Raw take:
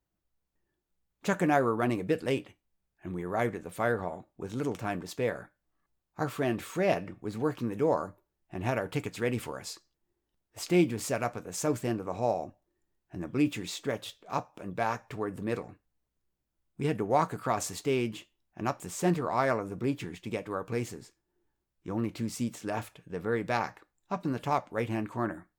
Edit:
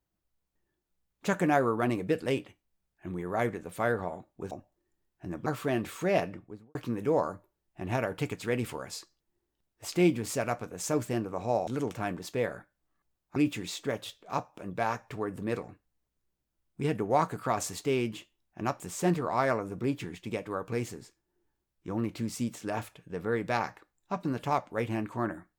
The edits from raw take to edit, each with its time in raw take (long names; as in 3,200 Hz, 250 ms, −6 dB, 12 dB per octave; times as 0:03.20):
0:04.51–0:06.20: swap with 0:12.41–0:13.36
0:06.98–0:07.49: fade out and dull